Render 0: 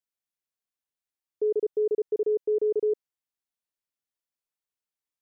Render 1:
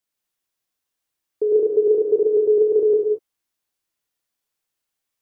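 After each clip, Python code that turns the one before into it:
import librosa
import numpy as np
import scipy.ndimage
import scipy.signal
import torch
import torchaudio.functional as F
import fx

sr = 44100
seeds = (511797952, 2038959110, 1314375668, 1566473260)

y = fx.rev_gated(x, sr, seeds[0], gate_ms=260, shape='flat', drr_db=-0.5)
y = F.gain(torch.from_numpy(y), 7.0).numpy()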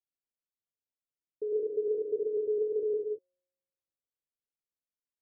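y = scipy.signal.sosfilt(scipy.signal.butter(6, 600.0, 'lowpass', fs=sr, output='sos'), x)
y = fx.notch(y, sr, hz=360.0, q=12.0)
y = fx.comb_fb(y, sr, f0_hz=180.0, decay_s=1.3, harmonics='all', damping=0.0, mix_pct=60)
y = F.gain(torch.from_numpy(y), -5.5).numpy()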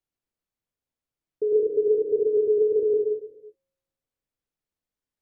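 y = fx.tilt_eq(x, sr, slope=-2.0)
y = fx.rev_gated(y, sr, seeds[1], gate_ms=380, shape='flat', drr_db=12.0)
y = F.gain(torch.from_numpy(y), 6.5).numpy()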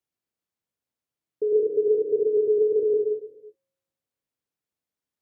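y = scipy.signal.sosfilt(scipy.signal.butter(2, 87.0, 'highpass', fs=sr, output='sos'), x)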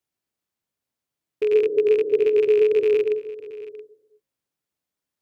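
y = fx.rattle_buzz(x, sr, strikes_db=-35.0, level_db=-27.0)
y = fx.notch(y, sr, hz=480.0, q=16.0)
y = y + 10.0 ** (-17.0 / 20.0) * np.pad(y, (int(675 * sr / 1000.0), 0))[:len(y)]
y = F.gain(torch.from_numpy(y), 3.5).numpy()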